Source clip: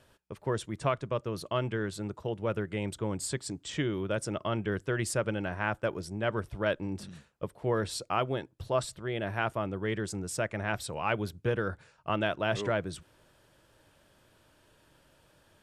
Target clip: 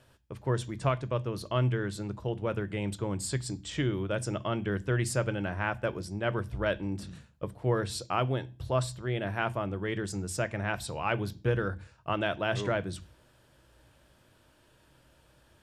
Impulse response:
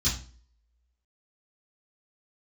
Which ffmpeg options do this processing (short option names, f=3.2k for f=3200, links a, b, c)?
-filter_complex "[0:a]asplit=2[a][b];[b]asuperstop=centerf=1300:order=4:qfactor=4.1[c];[1:a]atrim=start_sample=2205[d];[c][d]afir=irnorm=-1:irlink=0,volume=-22dB[e];[a][e]amix=inputs=2:normalize=0"